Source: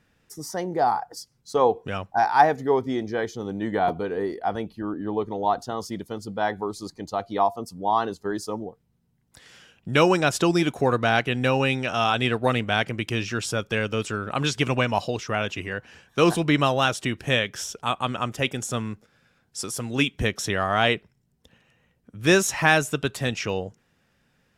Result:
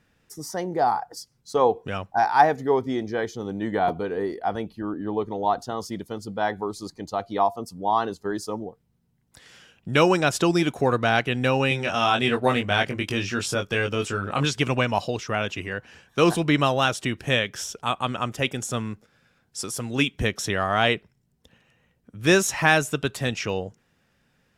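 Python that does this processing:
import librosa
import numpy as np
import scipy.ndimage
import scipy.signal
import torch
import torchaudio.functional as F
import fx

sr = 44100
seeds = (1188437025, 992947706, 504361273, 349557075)

y = fx.doubler(x, sr, ms=21.0, db=-4.5, at=(11.69, 14.45))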